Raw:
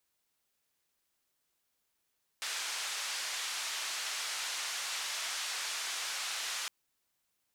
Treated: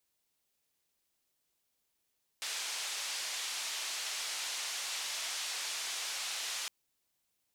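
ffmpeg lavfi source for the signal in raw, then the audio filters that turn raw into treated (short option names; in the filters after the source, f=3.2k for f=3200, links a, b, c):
-f lavfi -i "anoisesrc=c=white:d=4.26:r=44100:seed=1,highpass=f=1000,lowpass=f=6500,volume=-26.8dB"
-af "equalizer=f=1.4k:w=1.2:g=-4.5"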